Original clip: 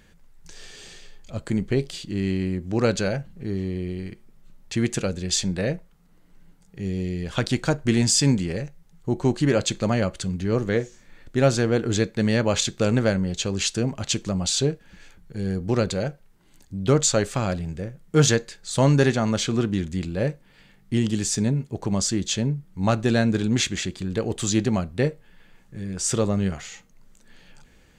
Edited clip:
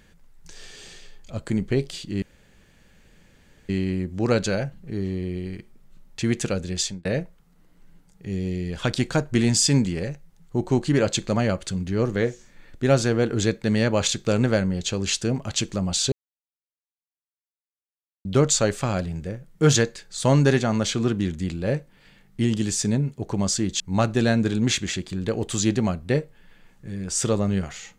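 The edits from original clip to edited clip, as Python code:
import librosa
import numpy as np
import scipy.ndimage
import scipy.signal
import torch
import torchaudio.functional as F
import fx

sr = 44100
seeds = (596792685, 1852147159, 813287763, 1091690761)

y = fx.edit(x, sr, fx.insert_room_tone(at_s=2.22, length_s=1.47),
    fx.fade_out_span(start_s=5.28, length_s=0.3),
    fx.silence(start_s=14.65, length_s=2.13),
    fx.cut(start_s=22.33, length_s=0.36), tone=tone)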